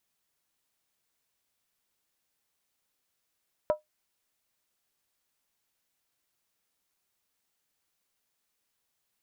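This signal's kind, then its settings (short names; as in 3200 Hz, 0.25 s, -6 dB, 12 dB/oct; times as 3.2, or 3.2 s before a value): skin hit, lowest mode 609 Hz, decay 0.14 s, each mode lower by 9 dB, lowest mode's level -17.5 dB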